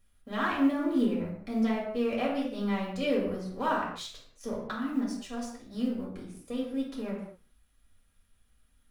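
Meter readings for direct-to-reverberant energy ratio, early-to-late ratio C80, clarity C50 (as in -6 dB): -5.5 dB, 6.5 dB, 3.5 dB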